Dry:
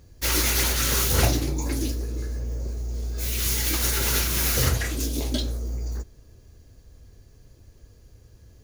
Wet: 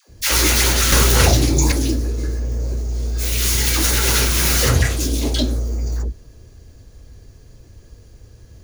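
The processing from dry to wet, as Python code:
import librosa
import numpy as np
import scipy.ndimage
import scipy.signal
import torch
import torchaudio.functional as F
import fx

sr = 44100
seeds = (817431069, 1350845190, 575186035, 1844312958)

y = fx.peak_eq(x, sr, hz=13000.0, db=-8.0, octaves=0.25)
y = fx.dispersion(y, sr, late='lows', ms=91.0, hz=630.0)
y = fx.band_squash(y, sr, depth_pct=100, at=(0.92, 1.72))
y = F.gain(torch.from_numpy(y), 7.5).numpy()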